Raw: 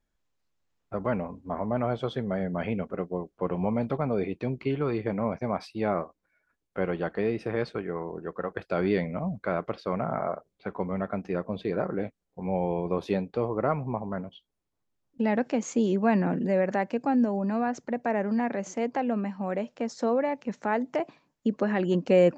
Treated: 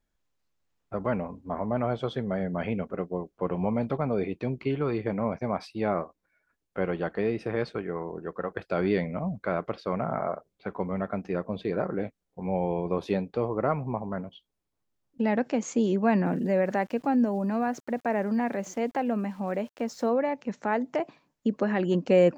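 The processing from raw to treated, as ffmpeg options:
-filter_complex "[0:a]asplit=3[s0][s1][s2];[s0]afade=t=out:st=16.25:d=0.02[s3];[s1]aeval=exprs='val(0)*gte(abs(val(0)),0.00282)':c=same,afade=t=in:st=16.25:d=0.02,afade=t=out:st=20.08:d=0.02[s4];[s2]afade=t=in:st=20.08:d=0.02[s5];[s3][s4][s5]amix=inputs=3:normalize=0"

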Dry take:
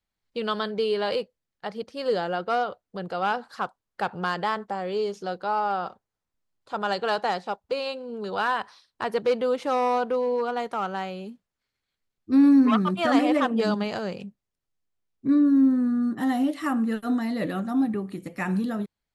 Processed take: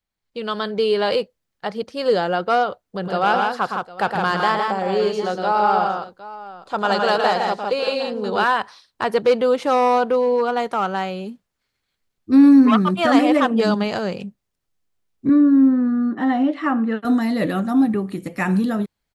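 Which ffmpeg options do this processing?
-filter_complex "[0:a]asplit=3[s0][s1][s2];[s0]afade=t=out:st=3.02:d=0.02[s3];[s1]aecho=1:1:113|161|759:0.501|0.631|0.15,afade=t=in:st=3.02:d=0.02,afade=t=out:st=8.43:d=0.02[s4];[s2]afade=t=in:st=8.43:d=0.02[s5];[s3][s4][s5]amix=inputs=3:normalize=0,asettb=1/sr,asplit=3[s6][s7][s8];[s6]atrim=end=15.294[s9];[s7]atrim=start=15.29:end=17.05,asetpts=PTS-STARTPTS,afade=t=in:d=0.004:c=qsin,afade=t=out:st=1.756:d=0.004:c=qsin,highpass=230,lowpass=2600[s10];[s8]atrim=start=17.046[s11];[s9][s10]acrossfade=d=0.004:c1=hsin:c2=qsin[s12];[s12][s11]acrossfade=d=0.004:c1=qsin:c2=hsin,dynaudnorm=f=440:g=3:m=2.24"

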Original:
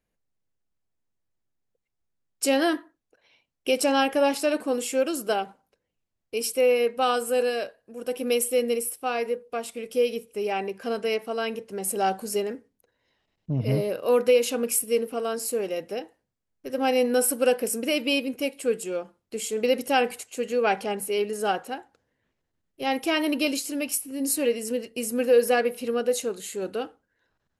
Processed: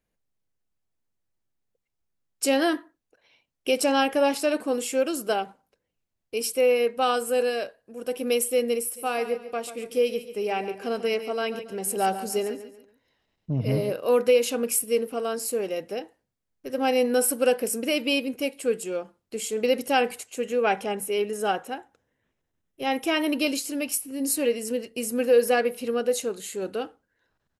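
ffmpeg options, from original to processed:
-filter_complex "[0:a]asplit=3[s0][s1][s2];[s0]afade=t=out:st=8.95:d=0.02[s3];[s1]aecho=1:1:140|280|420:0.251|0.0854|0.029,afade=t=in:st=8.95:d=0.02,afade=t=out:st=13.92:d=0.02[s4];[s2]afade=t=in:st=13.92:d=0.02[s5];[s3][s4][s5]amix=inputs=3:normalize=0,asettb=1/sr,asplit=3[s6][s7][s8];[s6]atrim=end=20.364[s9];[s7]atrim=start=20.36:end=23.33,asetpts=PTS-STARTPTS,afade=t=in:d=0.004:c=qsin,afade=t=out:st=2.966:d=0.004:c=qsin,bandreject=f=4500:w=5.6[s10];[s8]atrim=start=23.326[s11];[s9][s10]acrossfade=d=0.004:c1=hsin:c2=qsin[s12];[s12][s11]acrossfade=d=0.004:c1=qsin:c2=hsin"

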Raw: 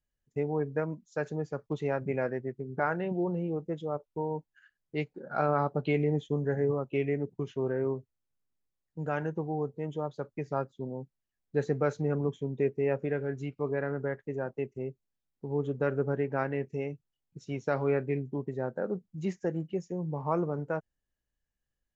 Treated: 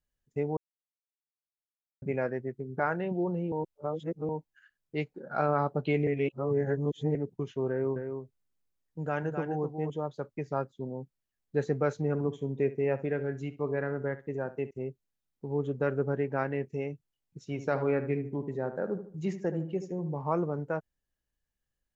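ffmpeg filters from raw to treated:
-filter_complex "[0:a]asettb=1/sr,asplit=3[s0][s1][s2];[s0]atrim=end=7.704[s3];[s1]atrim=start=7.7:end=9.9,asetpts=PTS-STARTPTS,afade=t=in:d=0.004:c=qsin,afade=t=out:st=2.196:d=0.004:c=qsin,aecho=1:1:258:0.473,atrim=end_sample=97020[s4];[s2]atrim=start=9.896[s5];[s3][s4]acrossfade=d=0.004:c1=hsin:c2=qsin[s6];[s6][s5]acrossfade=d=0.004:c1=qsin:c2=hsin,asettb=1/sr,asplit=3[s7][s8][s9];[s7]atrim=end=12.084[s10];[s8]atrim=start=12.08:end=14.71,asetpts=PTS-STARTPTS,afade=t=in:d=0.004:c=qsin,afade=t=out:st=2.626:d=0.004:c=qsin,aecho=1:1:66|132:0.168|0.0302,atrim=end_sample=115983[s11];[s9]atrim=start=14.706[s12];[s10][s11]acrossfade=d=0.004:c1=hsin:c2=qsin[s13];[s13][s12]acrossfade=d=0.004:c1=qsin:c2=hsin,asettb=1/sr,asplit=3[s14][s15][s16];[s14]atrim=end=17.454[s17];[s15]atrim=start=17.45:end=20.16,asetpts=PTS-STARTPTS,afade=t=in:d=0.004:c=qsin,afade=t=out:st=2.706:d=0.004:c=qsin,asplit=2[s18][s19];[s19]adelay=75,lowpass=f=2000:p=1,volume=0.316,asplit=2[s20][s21];[s21]adelay=75,lowpass=f=2000:p=1,volume=0.4,asplit=2[s22][s23];[s23]adelay=75,lowpass=f=2000:p=1,volume=0.4,asplit=2[s24][s25];[s25]adelay=75,lowpass=f=2000:p=1,volume=0.4[s26];[s18][s20][s22][s24][s26]amix=inputs=5:normalize=0,atrim=end_sample=119511[s27];[s16]atrim=start=20.156[s28];[s17][s27]acrossfade=d=0.004:c1=hsin:c2=qsin[s29];[s29][s28]acrossfade=d=0.004:c1=qsin:c2=hsin,asplit=7[s30][s31][s32][s33][s34][s35][s36];[s30]atrim=end=0.57,asetpts=PTS-STARTPTS,afade=t=out:st=0.566:d=0.004:c=hsin[s37];[s31]atrim=start=0.57:end=2.02,asetpts=PTS-STARTPTS,volume=0[s38];[s32]atrim=start=2.02:end=3.522,asetpts=PTS-STARTPTS,afade=t=in:d=0.004:c=hsin[s39];[s33]atrim=start=3.518:end=4.292,asetpts=PTS-STARTPTS,areverse[s40];[s34]atrim=start=4.288:end=6.072[s41];[s35]atrim=start=6.068:end=7.152,asetpts=PTS-STARTPTS,areverse[s42];[s36]atrim=start=7.148[s43];[s37][s38][s39]concat=n=3:v=0:a=1[s44];[s44][s40]acrossfade=d=0.004:c1=hsin:c2=hsin[s45];[s45][s41]acrossfade=d=0.004:c1=hsin:c2=hsin[s46];[s46][s42]acrossfade=d=0.004:c1=hsin:c2=hsin[s47];[s47][s43]acrossfade=d=0.004:c1=hsin:c2=hsin"

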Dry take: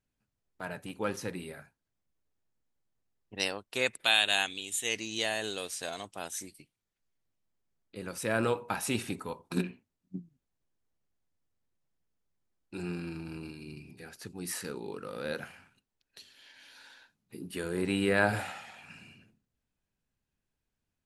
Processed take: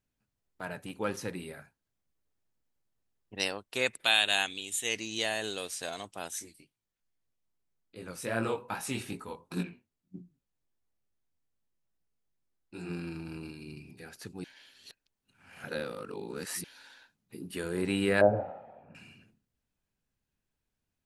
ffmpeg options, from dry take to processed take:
-filter_complex "[0:a]asplit=3[s0][s1][s2];[s0]afade=t=out:st=6.39:d=0.02[s3];[s1]flanger=delay=17.5:depth=6.8:speed=2.5,afade=t=in:st=6.39:d=0.02,afade=t=out:st=12.89:d=0.02[s4];[s2]afade=t=in:st=12.89:d=0.02[s5];[s3][s4][s5]amix=inputs=3:normalize=0,asettb=1/sr,asplit=3[s6][s7][s8];[s6]atrim=end=18.214[s9];[s7]atrim=start=18.21:end=18.95,asetpts=PTS-STARTPTS,afade=t=in:d=0.004:c=qsin,afade=t=out:st=0.736:d=0.004:c=qsin,lowpass=f=570:t=q:w=3.8[s10];[s8]atrim=start=18.946[s11];[s9][s10]acrossfade=d=0.004:c1=hsin:c2=qsin[s12];[s12][s11]acrossfade=d=0.004:c1=qsin:c2=hsin,asplit=3[s13][s14][s15];[s13]atrim=end=14.442[s16];[s14]atrim=start=14.438:end=16.642,asetpts=PTS-STARTPTS,areverse[s17];[s15]atrim=start=16.638[s18];[s16][s17]acrossfade=d=0.004:c1=hsin:c2=hsin[s19];[s19][s18]acrossfade=d=0.004:c1=hsin:c2=hsin"

